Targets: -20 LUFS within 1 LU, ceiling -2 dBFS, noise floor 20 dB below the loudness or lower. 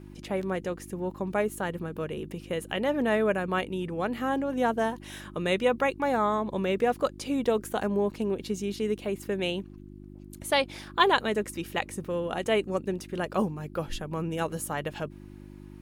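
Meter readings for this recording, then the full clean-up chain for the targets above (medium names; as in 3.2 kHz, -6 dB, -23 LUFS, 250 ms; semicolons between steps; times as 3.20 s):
hum 50 Hz; highest harmonic 350 Hz; hum level -44 dBFS; loudness -29.5 LUFS; peak level -7.5 dBFS; loudness target -20.0 LUFS
-> de-hum 50 Hz, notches 7; trim +9.5 dB; peak limiter -2 dBFS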